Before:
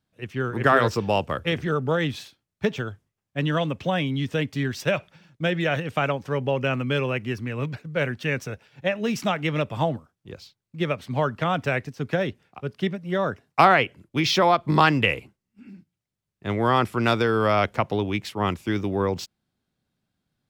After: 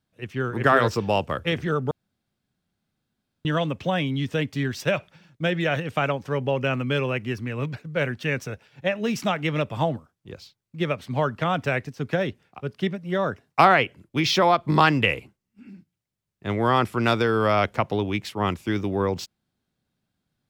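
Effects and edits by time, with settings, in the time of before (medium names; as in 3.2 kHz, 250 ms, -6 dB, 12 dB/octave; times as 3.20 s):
1.91–3.45 s: room tone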